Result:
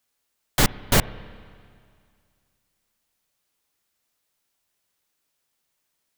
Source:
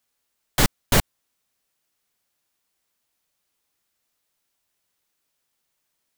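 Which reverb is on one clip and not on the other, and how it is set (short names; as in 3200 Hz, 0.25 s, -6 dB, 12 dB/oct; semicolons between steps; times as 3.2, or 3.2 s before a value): spring tank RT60 2.2 s, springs 30/52/60 ms, chirp 80 ms, DRR 17.5 dB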